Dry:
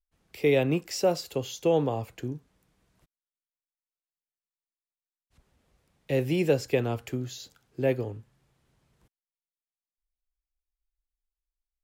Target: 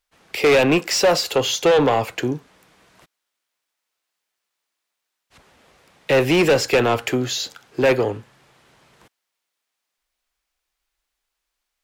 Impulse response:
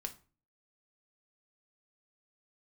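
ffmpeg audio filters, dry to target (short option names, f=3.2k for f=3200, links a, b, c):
-filter_complex "[0:a]asplit=2[a][b];[b]highpass=f=720:p=1,volume=24dB,asoftclip=type=tanh:threshold=-10.5dB[c];[a][c]amix=inputs=2:normalize=0,lowpass=f=4.1k:p=1,volume=-6dB,volume=14dB,asoftclip=hard,volume=-14dB,volume=3.5dB"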